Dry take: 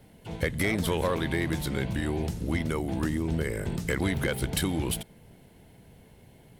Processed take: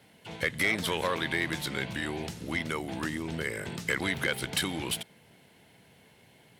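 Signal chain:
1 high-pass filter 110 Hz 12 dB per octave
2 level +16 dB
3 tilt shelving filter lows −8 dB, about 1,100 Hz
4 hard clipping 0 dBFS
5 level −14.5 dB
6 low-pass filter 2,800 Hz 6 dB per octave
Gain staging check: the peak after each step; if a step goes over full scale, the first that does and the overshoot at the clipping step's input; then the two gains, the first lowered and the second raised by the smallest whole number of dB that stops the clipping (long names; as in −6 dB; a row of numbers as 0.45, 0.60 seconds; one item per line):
−13.5, +2.5, +8.0, 0.0, −14.5, −15.0 dBFS
step 2, 8.0 dB
step 2 +8 dB, step 5 −6.5 dB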